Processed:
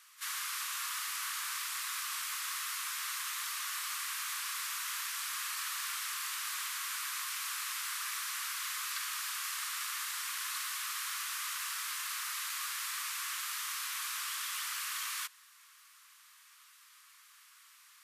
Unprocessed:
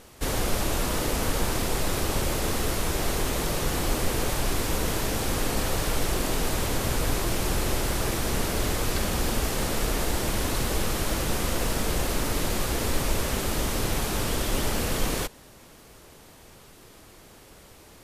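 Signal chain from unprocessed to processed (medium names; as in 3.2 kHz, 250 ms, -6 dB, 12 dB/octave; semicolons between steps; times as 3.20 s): Chebyshev high-pass 1.1 kHz, order 5; pre-echo 36 ms -16 dB; trim -5 dB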